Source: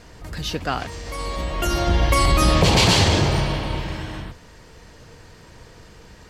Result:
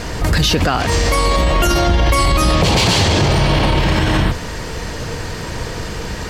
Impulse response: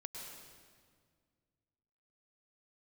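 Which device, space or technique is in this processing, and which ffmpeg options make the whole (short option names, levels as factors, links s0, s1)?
loud club master: -af "acompressor=threshold=0.0891:ratio=2.5,asoftclip=type=hard:threshold=0.2,alimiter=level_in=18.8:limit=0.891:release=50:level=0:latency=1,volume=0.562"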